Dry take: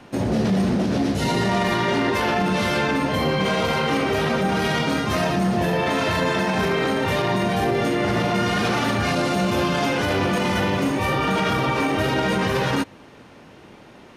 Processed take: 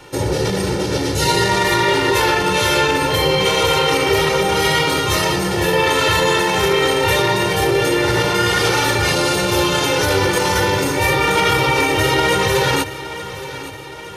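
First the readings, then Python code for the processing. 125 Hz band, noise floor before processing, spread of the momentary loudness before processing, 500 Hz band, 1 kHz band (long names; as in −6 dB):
+3.0 dB, −46 dBFS, 1 LU, +6.0 dB, +5.5 dB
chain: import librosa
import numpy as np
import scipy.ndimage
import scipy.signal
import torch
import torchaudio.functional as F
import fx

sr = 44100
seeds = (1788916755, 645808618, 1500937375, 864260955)

y = fx.high_shelf(x, sr, hz=4400.0, db=11.0)
y = y + 0.92 * np.pad(y, (int(2.2 * sr / 1000.0), 0))[:len(y)]
y = fx.echo_feedback(y, sr, ms=870, feedback_pct=55, wet_db=-14.5)
y = F.gain(torch.from_numpy(y), 2.0).numpy()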